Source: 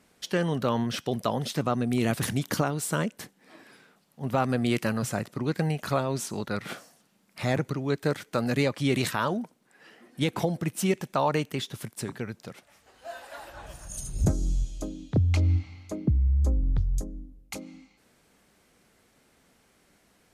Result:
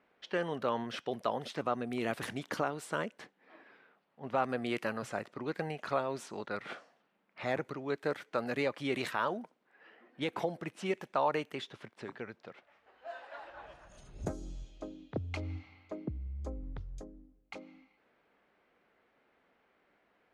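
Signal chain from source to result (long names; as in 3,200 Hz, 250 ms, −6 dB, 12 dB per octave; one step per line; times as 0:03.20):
bass and treble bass −14 dB, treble −12 dB
low-pass that shuts in the quiet parts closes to 2,900 Hz, open at −28.5 dBFS
level −4 dB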